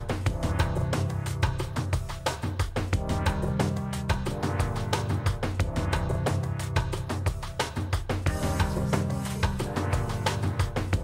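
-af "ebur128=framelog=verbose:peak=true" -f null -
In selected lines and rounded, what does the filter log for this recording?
Integrated loudness:
  I:         -29.0 LUFS
  Threshold: -39.0 LUFS
Loudness range:
  LRA:         0.7 LU
  Threshold: -49.1 LUFS
  LRA low:   -29.4 LUFS
  LRA high:  -28.7 LUFS
True peak:
  Peak:      -11.9 dBFS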